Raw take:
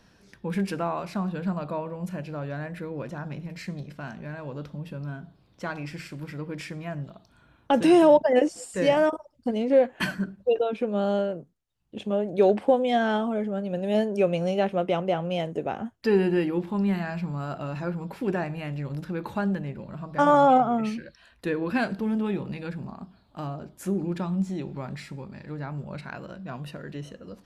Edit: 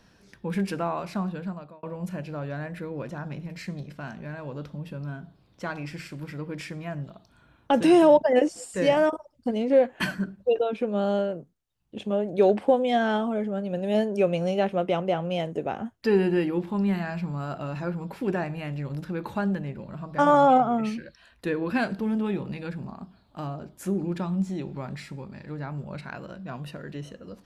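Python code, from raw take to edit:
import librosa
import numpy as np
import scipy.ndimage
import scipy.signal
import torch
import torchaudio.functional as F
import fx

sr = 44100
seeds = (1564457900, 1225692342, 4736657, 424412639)

y = fx.edit(x, sr, fx.fade_out_span(start_s=1.21, length_s=0.62), tone=tone)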